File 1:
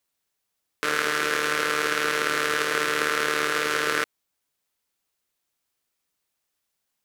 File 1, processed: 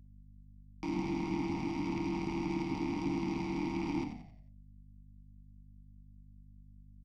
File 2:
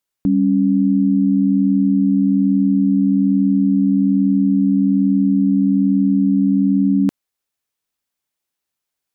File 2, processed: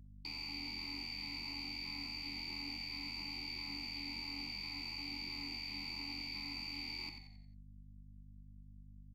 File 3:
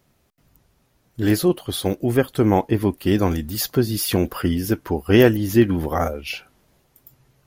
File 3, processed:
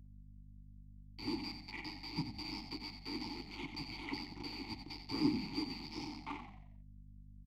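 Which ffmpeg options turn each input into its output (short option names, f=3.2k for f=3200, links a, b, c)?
-filter_complex "[0:a]afftfilt=real='real(if(lt(b,272),68*(eq(floor(b/68),0)*1+eq(floor(b/68),1)*2+eq(floor(b/68),2)*3+eq(floor(b/68),3)*0)+mod(b,68),b),0)':imag='imag(if(lt(b,272),68*(eq(floor(b/68),0)*1+eq(floor(b/68),1)*2+eq(floor(b/68),2)*3+eq(floor(b/68),3)*0)+mod(b,68),b),0)':win_size=2048:overlap=0.75,acrossover=split=300[a][b];[b]acompressor=threshold=-32dB:ratio=2[c];[a][c]amix=inputs=2:normalize=0,acrusher=bits=4:mix=0:aa=0.000001,adynamicsmooth=sensitivity=6.5:basefreq=900,lowshelf=f=250:g=9,flanger=delay=4.8:depth=3.3:regen=-71:speed=0.86:shape=triangular,asplit=3[d][e][f];[d]bandpass=f=300:t=q:w=8,volume=0dB[g];[e]bandpass=f=870:t=q:w=8,volume=-6dB[h];[f]bandpass=f=2.24k:t=q:w=8,volume=-9dB[i];[g][h][i]amix=inputs=3:normalize=0,aeval=exprs='val(0)+0.000631*(sin(2*PI*50*n/s)+sin(2*PI*2*50*n/s)/2+sin(2*PI*3*50*n/s)/3+sin(2*PI*4*50*n/s)/4+sin(2*PI*5*50*n/s)/5)':c=same,bandreject=f=60.6:t=h:w=4,bandreject=f=121.2:t=h:w=4,bandreject=f=181.8:t=h:w=4,bandreject=f=242.4:t=h:w=4,bandreject=f=303:t=h:w=4,bandreject=f=363.6:t=h:w=4,bandreject=f=424.2:t=h:w=4,bandreject=f=484.8:t=h:w=4,bandreject=f=545.4:t=h:w=4,bandreject=f=606:t=h:w=4,bandreject=f=666.6:t=h:w=4,bandreject=f=727.2:t=h:w=4,bandreject=f=787.8:t=h:w=4,bandreject=f=848.4:t=h:w=4,asplit=2[j][k];[k]asplit=5[l][m][n][o][p];[l]adelay=89,afreqshift=-45,volume=-8dB[q];[m]adelay=178,afreqshift=-90,volume=-15.5dB[r];[n]adelay=267,afreqshift=-135,volume=-23.1dB[s];[o]adelay=356,afreqshift=-180,volume=-30.6dB[t];[p]adelay=445,afreqshift=-225,volume=-38.1dB[u];[q][r][s][t][u]amix=inputs=5:normalize=0[v];[j][v]amix=inputs=2:normalize=0,volume=9.5dB"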